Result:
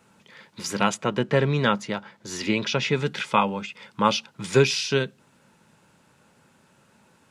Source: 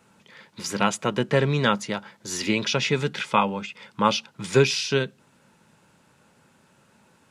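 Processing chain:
0:00.94–0:03.06: high-shelf EQ 6,500 Hz −9.5 dB

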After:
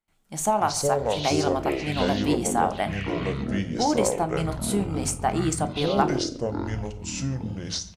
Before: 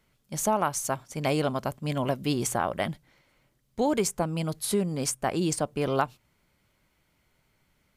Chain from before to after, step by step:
mains-hum notches 60/120/180 Hz
noise gate with hold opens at −59 dBFS
thirty-one-band graphic EQ 125 Hz −9 dB, 500 Hz −6 dB, 800 Hz +8 dB, 5,000 Hz −4 dB, 8,000 Hz +4 dB, 12,500 Hz −5 dB
on a send at −9 dB: convolution reverb RT60 0.30 s, pre-delay 3 ms
on the sum: delay with pitch and tempo change per echo 130 ms, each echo −7 semitones, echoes 3
far-end echo of a speakerphone 140 ms, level −19 dB

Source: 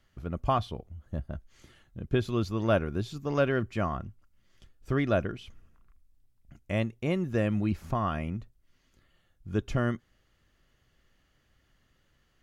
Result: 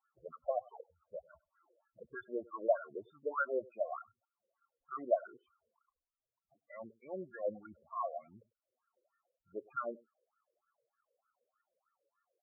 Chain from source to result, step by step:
LFO wah 3.3 Hz 480–1,400 Hz, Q 6
single-tap delay 98 ms −23 dB
spectral peaks only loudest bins 8
level +3.5 dB

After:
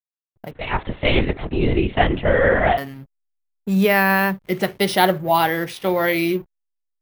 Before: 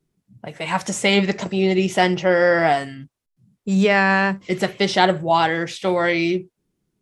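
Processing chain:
slack as between gear wheels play −35 dBFS
bad sample-rate conversion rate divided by 3×, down filtered, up hold
0:00.51–0:02.78: linear-prediction vocoder at 8 kHz whisper

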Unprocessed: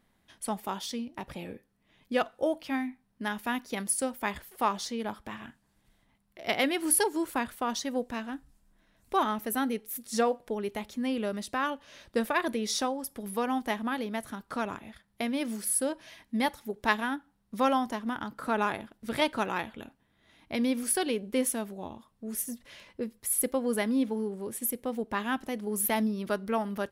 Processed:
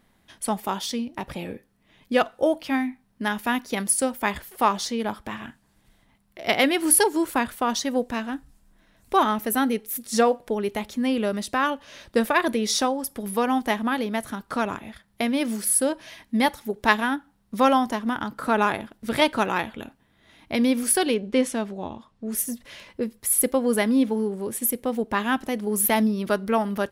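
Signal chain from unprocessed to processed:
0:21.14–0:22.32: low-pass filter 5,900 Hz 12 dB per octave
level +7 dB

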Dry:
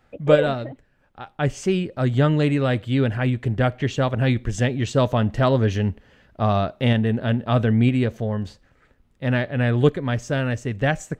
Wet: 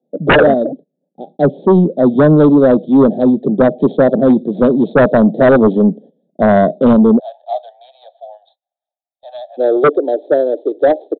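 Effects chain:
stylus tracing distortion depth 0.3 ms
Butterworth high-pass 160 Hz 72 dB per octave, from 0:07.18 700 Hz, from 0:09.57 300 Hz
noise gate −47 dBFS, range −18 dB
inverse Chebyshev band-stop filter 1,000–2,900 Hz, stop band 40 dB
dynamic equaliser 880 Hz, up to +6 dB, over −39 dBFS, Q 1.3
sine wavefolder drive 13 dB, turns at −2.5 dBFS
high-frequency loss of the air 150 metres
downsampling to 8,000 Hz
level −1 dB

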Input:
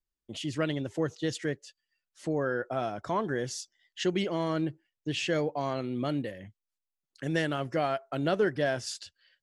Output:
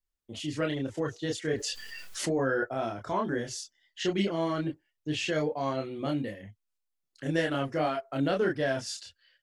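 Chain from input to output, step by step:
multi-voice chorus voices 6, 0.55 Hz, delay 28 ms, depth 2.4 ms
0:01.50–0:02.64: envelope flattener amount 70%
level +3 dB

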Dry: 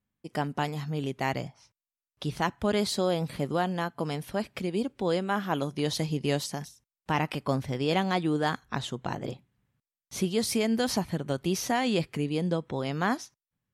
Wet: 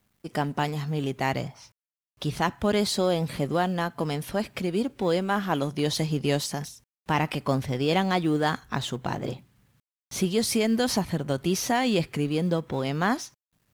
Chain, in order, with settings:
mu-law and A-law mismatch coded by mu
level +2 dB

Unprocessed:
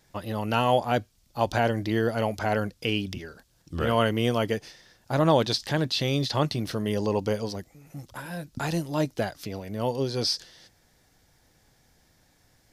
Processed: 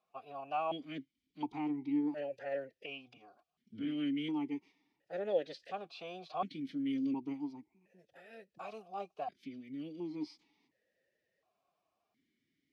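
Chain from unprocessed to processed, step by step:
phase-vocoder pitch shift with formants kept +4.5 semitones
formant filter that steps through the vowels 1.4 Hz
level −3 dB

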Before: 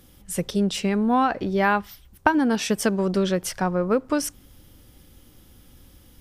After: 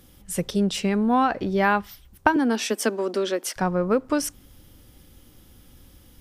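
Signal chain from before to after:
0:02.36–0:03.56: Chebyshev high-pass filter 230 Hz, order 5

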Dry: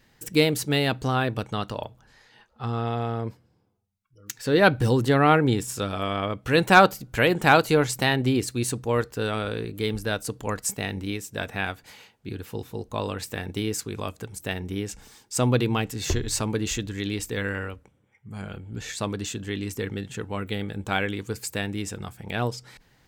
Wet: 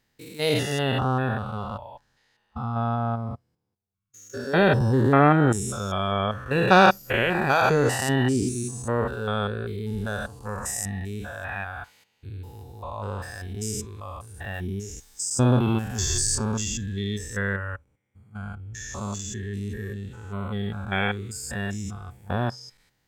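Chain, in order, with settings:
spectrum averaged block by block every 200 ms
noise reduction from a noise print of the clip's start 14 dB
high-shelf EQ 5,300 Hz +5.5 dB, from 0:14.54 +12 dB, from 0:16.35 +6 dB
level +4 dB

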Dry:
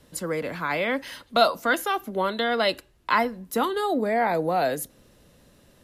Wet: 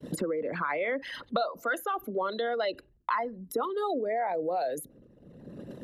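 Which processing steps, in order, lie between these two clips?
spectral envelope exaggerated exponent 2
downward expander −50 dBFS
multiband upward and downward compressor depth 100%
level −6.5 dB

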